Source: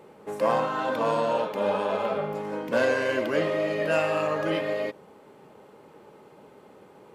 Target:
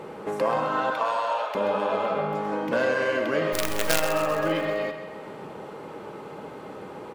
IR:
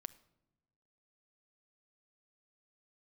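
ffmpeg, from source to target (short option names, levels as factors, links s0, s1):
-filter_complex "[0:a]lowpass=f=2200:p=1,equalizer=f=1300:w=1.7:g=2.5,asettb=1/sr,asplit=3[s0][s1][s2];[s0]atrim=end=0.904[s3];[s1]atrim=start=0.9:end=1.55,asetpts=PTS-STARTPTS,afade=t=in:d=0.004:c=qsin,afade=t=out:st=0.646:d=0.004:c=qsin,highpass=f=640:w=0.5412,highpass=f=640:w=1.3066[s4];[s2]atrim=start=1.546[s5];[s3][s4]acrossfade=d=0.004:c1=hsin:c2=qsin[s6];[s6][s5]acrossfade=d=0.004:c1=qsin:c2=hsin,acompressor=threshold=0.00631:ratio=2,asplit=3[s7][s8][s9];[s7]afade=t=out:st=3.52:d=0.02[s10];[s8]acrusher=bits=6:dc=4:mix=0:aa=0.000001,afade=t=in:st=3.52:d=0.02,afade=t=out:st=4.01:d=0.02[s11];[s9]afade=t=in:st=4.01:d=0.02[s12];[s10][s11][s12]amix=inputs=3:normalize=0,aecho=1:1:131|262|393|524|655|786|917:0.316|0.18|0.103|0.0586|0.0334|0.019|0.0108,asplit=2[s13][s14];[1:a]atrim=start_sample=2205,highshelf=f=2700:g=11.5[s15];[s14][s15]afir=irnorm=-1:irlink=0,volume=2.66[s16];[s13][s16]amix=inputs=2:normalize=0,volume=1.41"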